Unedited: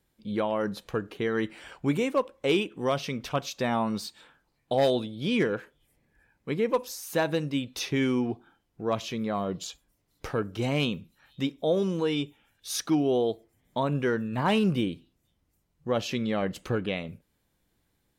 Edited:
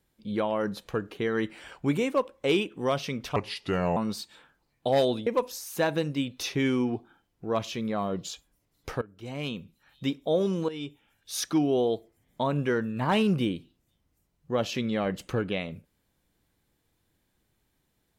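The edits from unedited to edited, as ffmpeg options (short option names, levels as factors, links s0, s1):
-filter_complex "[0:a]asplit=6[s0][s1][s2][s3][s4][s5];[s0]atrim=end=3.364[s6];[s1]atrim=start=3.36:end=3.82,asetpts=PTS-STARTPTS,asetrate=33516,aresample=44100,atrim=end_sample=26692,asetpts=PTS-STARTPTS[s7];[s2]atrim=start=3.816:end=5.122[s8];[s3]atrim=start=6.628:end=10.38,asetpts=PTS-STARTPTS,afade=t=out:st=3.748:d=0.004:c=hsin:silence=0.0749894[s9];[s4]atrim=start=10.38:end=12.05,asetpts=PTS-STARTPTS,afade=t=in:d=1.05:silence=0.0749894,afade=t=out:st=1.666:d=0.004:c=hsin:silence=0.211349[s10];[s5]atrim=start=12.05,asetpts=PTS-STARTPTS,afade=t=in:d=0.71:c=qsin:silence=0.211349[s11];[s6][s7]acrossfade=d=0.004:c1=hsin:c2=hsin[s12];[s12][s8]acrossfade=d=0.004:c1=hsin:c2=hsin[s13];[s9][s10][s11]concat=n=3:v=0:a=1[s14];[s13][s14]acrossfade=d=0.004:c1=hsin:c2=hsin"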